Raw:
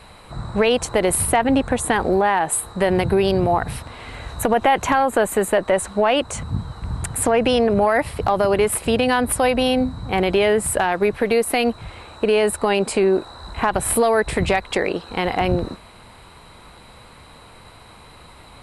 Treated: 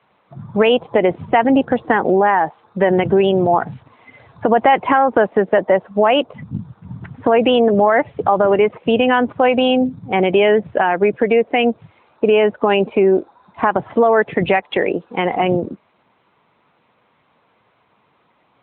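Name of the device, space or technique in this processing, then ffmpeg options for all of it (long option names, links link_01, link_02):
mobile call with aggressive noise cancelling: -af "highpass=150,afftdn=noise_reduction=16:noise_floor=-27,volume=4.5dB" -ar 8000 -c:a libopencore_amrnb -b:a 10200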